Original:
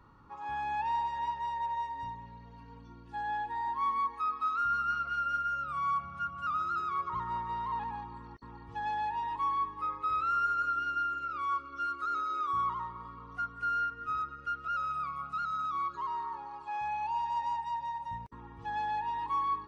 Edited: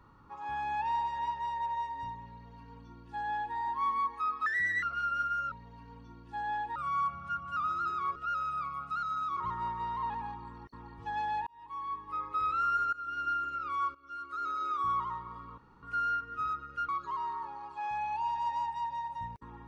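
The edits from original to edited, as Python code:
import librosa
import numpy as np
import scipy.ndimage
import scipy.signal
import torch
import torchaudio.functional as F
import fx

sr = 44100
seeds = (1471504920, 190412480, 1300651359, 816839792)

y = fx.edit(x, sr, fx.duplicate(start_s=2.32, length_s=1.24, to_s=5.66),
    fx.speed_span(start_s=4.46, length_s=0.51, speed=1.39),
    fx.fade_in_span(start_s=9.16, length_s=0.86),
    fx.fade_in_from(start_s=10.62, length_s=0.34, floor_db=-18.0),
    fx.fade_in_from(start_s=11.64, length_s=0.68, floor_db=-18.0),
    fx.room_tone_fill(start_s=13.27, length_s=0.25),
    fx.move(start_s=14.58, length_s=1.21, to_s=7.06), tone=tone)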